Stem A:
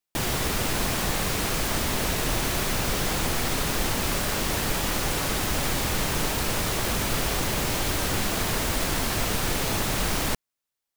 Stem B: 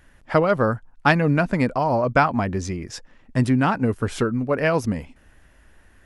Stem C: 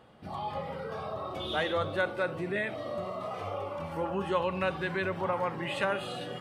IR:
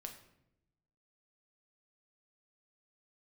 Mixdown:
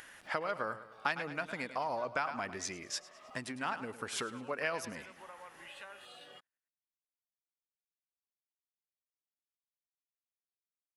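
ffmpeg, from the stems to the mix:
-filter_complex "[1:a]volume=0.794,asplit=2[s0][s1];[s1]volume=0.106[s2];[2:a]volume=0.15[s3];[s0][s3]amix=inputs=2:normalize=0,acompressor=threshold=0.0631:ratio=10,volume=1[s4];[s2]aecho=0:1:105|210|315|420|525|630:1|0.43|0.185|0.0795|0.0342|0.0147[s5];[s4][s5]amix=inputs=2:normalize=0,highpass=f=1500:p=1,acompressor=mode=upward:threshold=0.00631:ratio=2.5"

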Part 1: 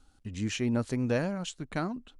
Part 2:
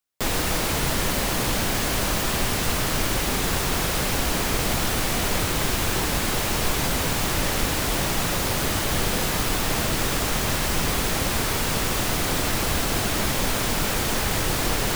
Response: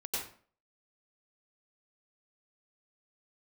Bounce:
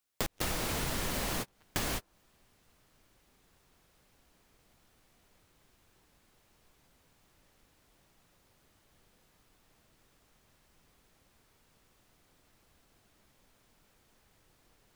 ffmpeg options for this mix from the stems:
-filter_complex "[0:a]equalizer=f=80:t=o:w=0.84:g=6,acrusher=bits=3:mix=0:aa=0.5,volume=0.237,asplit=3[s0][s1][s2];[s1]volume=0.211[s3];[1:a]volume=1.12[s4];[s2]apad=whole_len=659365[s5];[s4][s5]sidechaingate=range=0.00562:threshold=0.00112:ratio=16:detection=peak[s6];[2:a]atrim=start_sample=2205[s7];[s3][s7]afir=irnorm=-1:irlink=0[s8];[s0][s6][s8]amix=inputs=3:normalize=0,acompressor=threshold=0.0316:ratio=16"

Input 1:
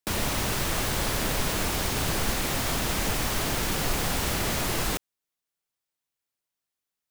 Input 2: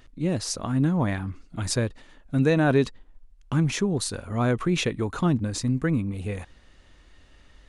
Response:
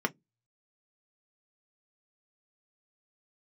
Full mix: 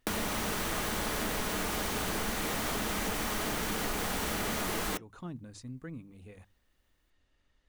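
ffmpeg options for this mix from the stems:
-filter_complex "[0:a]volume=1.12,asplit=2[s0][s1];[s1]volume=0.266[s2];[1:a]bandreject=f=50:t=h:w=6,bandreject=f=100:t=h:w=6,bandreject=f=150:t=h:w=6,bandreject=f=200:t=h:w=6,volume=0.119[s3];[2:a]atrim=start_sample=2205[s4];[s2][s4]afir=irnorm=-1:irlink=0[s5];[s0][s3][s5]amix=inputs=3:normalize=0,acompressor=threshold=0.0224:ratio=3"

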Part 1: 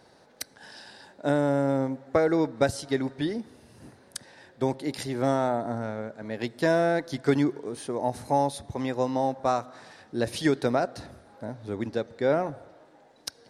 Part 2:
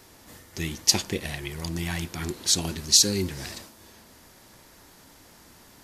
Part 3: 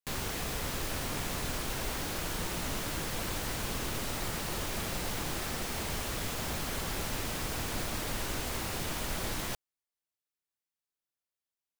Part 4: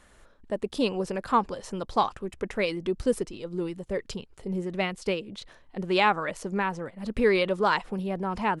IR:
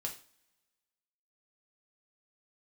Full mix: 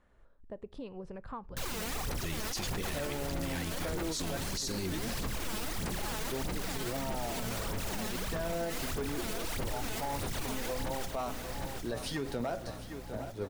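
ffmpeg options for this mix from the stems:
-filter_complex "[0:a]volume=7.08,asoftclip=hard,volume=0.141,flanger=delay=4.4:depth=8.1:regen=50:speed=0.21:shape=triangular,adelay=1700,volume=0.668,asplit=3[s0][s1][s2];[s1]volume=0.447[s3];[s2]volume=0.237[s4];[1:a]adelay=1650,volume=1[s5];[2:a]aphaser=in_gain=1:out_gain=1:delay=4.7:decay=0.75:speed=1.6:type=sinusoidal,aeval=exprs='val(0)+0.00631*(sin(2*PI*60*n/s)+sin(2*PI*2*60*n/s)/2+sin(2*PI*3*60*n/s)/3+sin(2*PI*4*60*n/s)/4+sin(2*PI*5*60*n/s)/5)':c=same,adelay=1500,volume=0.75,asplit=2[s6][s7];[s7]volume=0.282[s8];[3:a]lowpass=f=1100:p=1,asubboost=boost=10:cutoff=120,acompressor=threshold=0.0282:ratio=5,volume=0.335,asplit=2[s9][s10];[s10]volume=0.158[s11];[4:a]atrim=start_sample=2205[s12];[s3][s11]amix=inputs=2:normalize=0[s13];[s13][s12]afir=irnorm=-1:irlink=0[s14];[s4][s8]amix=inputs=2:normalize=0,aecho=0:1:756|1512|2268|3024|3780|4536|5292|6048:1|0.56|0.314|0.176|0.0983|0.0551|0.0308|0.0173[s15];[s0][s5][s6][s9][s14][s15]amix=inputs=6:normalize=0,alimiter=level_in=1.33:limit=0.0631:level=0:latency=1:release=38,volume=0.75"

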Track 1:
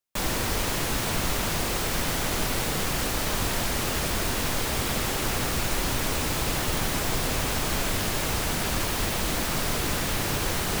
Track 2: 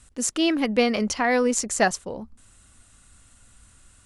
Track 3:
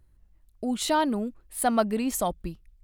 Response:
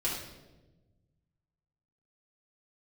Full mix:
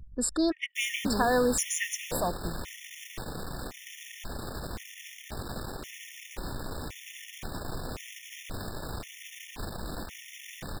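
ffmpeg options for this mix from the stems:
-filter_complex "[0:a]adelay=600,volume=0.422[s0];[1:a]lowshelf=f=140:g=-10.5,acompressor=threshold=0.0316:ratio=1.5,volume=1.26[s1];[2:a]acompressor=mode=upward:threshold=0.0447:ratio=2.5,volume=0.708[s2];[s0][s1][s2]amix=inputs=3:normalize=0,anlmdn=6.31,afftfilt=real='re*gt(sin(2*PI*0.94*pts/sr)*(1-2*mod(floor(b*sr/1024/1800),2)),0)':imag='im*gt(sin(2*PI*0.94*pts/sr)*(1-2*mod(floor(b*sr/1024/1800),2)),0)':win_size=1024:overlap=0.75"

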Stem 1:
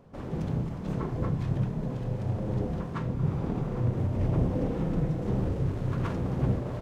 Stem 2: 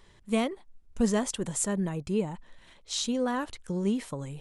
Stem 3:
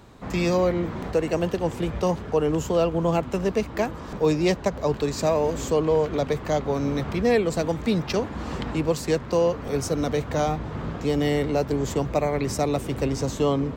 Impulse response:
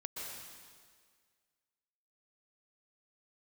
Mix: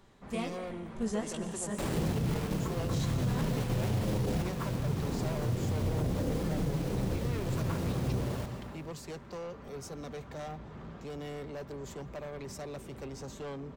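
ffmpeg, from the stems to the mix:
-filter_complex "[0:a]acrusher=bits=6:mix=0:aa=0.000001,adelay=1650,volume=1.41,asplit=2[s0][s1];[s1]volume=0.211[s2];[1:a]flanger=delay=18:depth=6.3:speed=2.2,volume=0.376,asplit=3[s3][s4][s5];[s4]volume=0.708[s6];[2:a]aecho=1:1:5.1:0.32,asoftclip=type=tanh:threshold=0.0668,volume=0.211,asplit=2[s7][s8];[s8]volume=0.0668[s9];[s5]apad=whole_len=373295[s10];[s0][s10]sidechaingate=range=0.398:threshold=0.00141:ratio=16:detection=peak[s11];[3:a]atrim=start_sample=2205[s12];[s2][s6][s9]amix=inputs=3:normalize=0[s13];[s13][s12]afir=irnorm=-1:irlink=0[s14];[s11][s3][s7][s14]amix=inputs=4:normalize=0,alimiter=limit=0.0708:level=0:latency=1:release=48"

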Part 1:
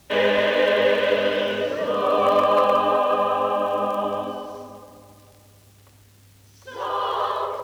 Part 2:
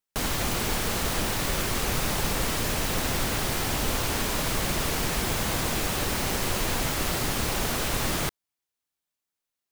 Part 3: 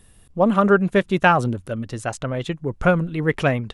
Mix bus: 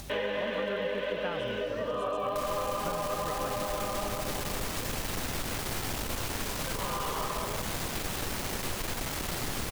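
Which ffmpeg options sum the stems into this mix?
-filter_complex "[0:a]acompressor=mode=upward:threshold=0.0355:ratio=2.5,volume=0.531[s0];[1:a]acompressor=mode=upward:threshold=0.0355:ratio=2.5,aeval=exprs='(tanh(15.8*val(0)+0.6)-tanh(0.6))/15.8':c=same,adelay=2200,volume=1[s1];[2:a]aeval=exprs='val(0)+0.0282*(sin(2*PI*50*n/s)+sin(2*PI*2*50*n/s)/2+sin(2*PI*3*50*n/s)/3+sin(2*PI*4*50*n/s)/4+sin(2*PI*5*50*n/s)/5)':c=same,volume=0.158[s2];[s0][s1][s2]amix=inputs=3:normalize=0,acompressor=threshold=0.0355:ratio=6"

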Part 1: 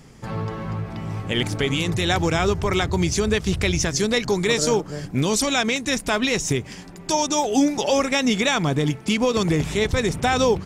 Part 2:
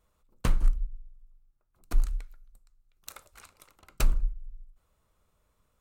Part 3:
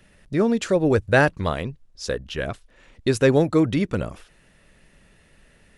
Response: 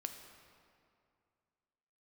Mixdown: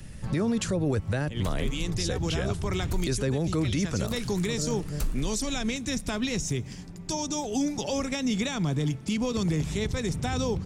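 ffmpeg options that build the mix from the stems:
-filter_complex "[0:a]highshelf=f=9500:g=-9,volume=0.266,asplit=2[s0][s1];[s1]volume=0.178[s2];[1:a]adelay=1000,volume=0.794[s3];[2:a]volume=1.19[s4];[3:a]atrim=start_sample=2205[s5];[s2][s5]afir=irnorm=-1:irlink=0[s6];[s0][s3][s4][s6]amix=inputs=4:normalize=0,bass=f=250:g=13,treble=f=4000:g=9,acrossover=split=220|490[s7][s8][s9];[s7]acompressor=threshold=0.0398:ratio=4[s10];[s8]acompressor=threshold=0.0355:ratio=4[s11];[s9]acompressor=threshold=0.0355:ratio=4[s12];[s10][s11][s12]amix=inputs=3:normalize=0,alimiter=limit=0.112:level=0:latency=1:release=12"

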